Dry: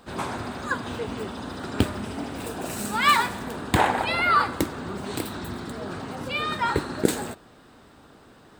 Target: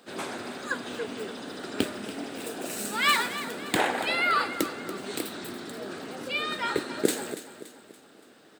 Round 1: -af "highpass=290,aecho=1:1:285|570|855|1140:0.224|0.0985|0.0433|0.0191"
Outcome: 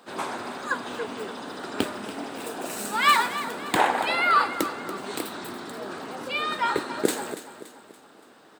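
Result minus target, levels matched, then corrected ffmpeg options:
1,000 Hz band +3.5 dB
-af "highpass=290,equalizer=frequency=980:width=1.6:gain=-9,aecho=1:1:285|570|855|1140:0.224|0.0985|0.0433|0.0191"

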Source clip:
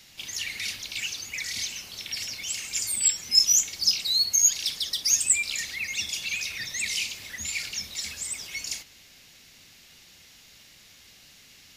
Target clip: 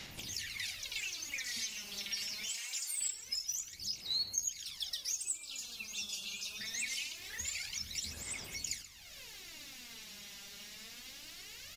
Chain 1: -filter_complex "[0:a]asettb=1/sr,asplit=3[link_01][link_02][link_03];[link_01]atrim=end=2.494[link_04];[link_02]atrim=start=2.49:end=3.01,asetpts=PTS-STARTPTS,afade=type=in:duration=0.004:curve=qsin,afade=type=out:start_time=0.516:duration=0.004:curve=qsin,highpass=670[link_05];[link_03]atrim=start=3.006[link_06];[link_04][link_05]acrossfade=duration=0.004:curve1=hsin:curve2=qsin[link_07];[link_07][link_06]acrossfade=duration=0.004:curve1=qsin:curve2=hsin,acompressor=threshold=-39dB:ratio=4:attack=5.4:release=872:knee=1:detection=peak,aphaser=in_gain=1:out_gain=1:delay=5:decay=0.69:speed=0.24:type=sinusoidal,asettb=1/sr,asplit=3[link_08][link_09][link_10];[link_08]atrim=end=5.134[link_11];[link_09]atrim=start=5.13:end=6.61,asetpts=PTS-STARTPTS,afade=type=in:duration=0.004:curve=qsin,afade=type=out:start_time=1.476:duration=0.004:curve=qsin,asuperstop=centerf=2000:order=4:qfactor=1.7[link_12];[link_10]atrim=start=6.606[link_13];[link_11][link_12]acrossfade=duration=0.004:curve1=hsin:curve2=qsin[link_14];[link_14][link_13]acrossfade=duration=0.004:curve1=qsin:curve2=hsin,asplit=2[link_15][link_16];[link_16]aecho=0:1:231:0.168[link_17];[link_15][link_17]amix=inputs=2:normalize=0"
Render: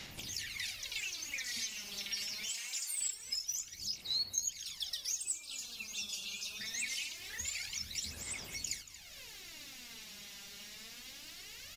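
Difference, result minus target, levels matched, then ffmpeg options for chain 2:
echo 99 ms late
-filter_complex "[0:a]asettb=1/sr,asplit=3[link_01][link_02][link_03];[link_01]atrim=end=2.494[link_04];[link_02]atrim=start=2.49:end=3.01,asetpts=PTS-STARTPTS,afade=type=in:duration=0.004:curve=qsin,afade=type=out:start_time=0.516:duration=0.004:curve=qsin,highpass=670[link_05];[link_03]atrim=start=3.006[link_06];[link_04][link_05]acrossfade=duration=0.004:curve1=hsin:curve2=qsin[link_07];[link_07][link_06]acrossfade=duration=0.004:curve1=qsin:curve2=hsin,acompressor=threshold=-39dB:ratio=4:attack=5.4:release=872:knee=1:detection=peak,aphaser=in_gain=1:out_gain=1:delay=5:decay=0.69:speed=0.24:type=sinusoidal,asettb=1/sr,asplit=3[link_08][link_09][link_10];[link_08]atrim=end=5.134[link_11];[link_09]atrim=start=5.13:end=6.61,asetpts=PTS-STARTPTS,afade=type=in:duration=0.004:curve=qsin,afade=type=out:start_time=1.476:duration=0.004:curve=qsin,asuperstop=centerf=2000:order=4:qfactor=1.7[link_12];[link_10]atrim=start=6.606[link_13];[link_11][link_12]acrossfade=duration=0.004:curve1=hsin:curve2=qsin[link_14];[link_14][link_13]acrossfade=duration=0.004:curve1=qsin:curve2=hsin,asplit=2[link_15][link_16];[link_16]aecho=0:1:132:0.168[link_17];[link_15][link_17]amix=inputs=2:normalize=0"

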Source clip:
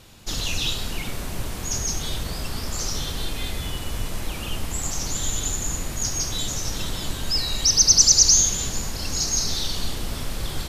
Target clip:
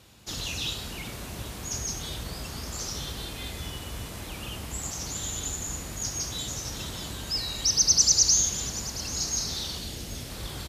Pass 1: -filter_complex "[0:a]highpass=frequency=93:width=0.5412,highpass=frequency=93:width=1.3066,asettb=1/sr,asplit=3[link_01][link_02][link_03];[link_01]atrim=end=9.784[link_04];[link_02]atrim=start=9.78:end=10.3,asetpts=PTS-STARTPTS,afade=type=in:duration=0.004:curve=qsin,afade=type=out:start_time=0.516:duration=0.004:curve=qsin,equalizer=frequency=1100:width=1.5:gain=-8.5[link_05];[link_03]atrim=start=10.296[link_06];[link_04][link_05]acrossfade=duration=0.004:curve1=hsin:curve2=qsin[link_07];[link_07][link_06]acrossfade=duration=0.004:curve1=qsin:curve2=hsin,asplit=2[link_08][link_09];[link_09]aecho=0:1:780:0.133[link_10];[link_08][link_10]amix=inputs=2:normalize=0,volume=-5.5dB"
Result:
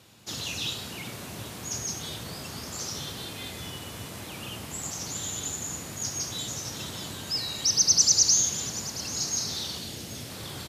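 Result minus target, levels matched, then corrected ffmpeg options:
125 Hz band −3.0 dB
-filter_complex "[0:a]highpass=frequency=45:width=0.5412,highpass=frequency=45:width=1.3066,asettb=1/sr,asplit=3[link_01][link_02][link_03];[link_01]atrim=end=9.784[link_04];[link_02]atrim=start=9.78:end=10.3,asetpts=PTS-STARTPTS,afade=type=in:duration=0.004:curve=qsin,afade=type=out:start_time=0.516:duration=0.004:curve=qsin,equalizer=frequency=1100:width=1.5:gain=-8.5[link_05];[link_03]atrim=start=10.296[link_06];[link_04][link_05]acrossfade=duration=0.004:curve1=hsin:curve2=qsin[link_07];[link_07][link_06]acrossfade=duration=0.004:curve1=qsin:curve2=hsin,asplit=2[link_08][link_09];[link_09]aecho=0:1:780:0.133[link_10];[link_08][link_10]amix=inputs=2:normalize=0,volume=-5.5dB"

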